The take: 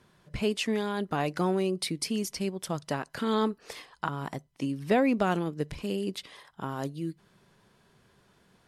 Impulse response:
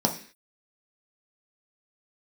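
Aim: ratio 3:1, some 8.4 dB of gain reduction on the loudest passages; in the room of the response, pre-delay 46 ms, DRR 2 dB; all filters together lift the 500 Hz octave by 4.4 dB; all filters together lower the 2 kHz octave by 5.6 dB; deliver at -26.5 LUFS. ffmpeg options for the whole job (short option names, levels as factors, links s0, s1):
-filter_complex "[0:a]equalizer=f=500:t=o:g=6,equalizer=f=2000:t=o:g=-8.5,acompressor=threshold=0.0398:ratio=3,asplit=2[s0][s1];[1:a]atrim=start_sample=2205,adelay=46[s2];[s1][s2]afir=irnorm=-1:irlink=0,volume=0.211[s3];[s0][s3]amix=inputs=2:normalize=0,volume=1.12"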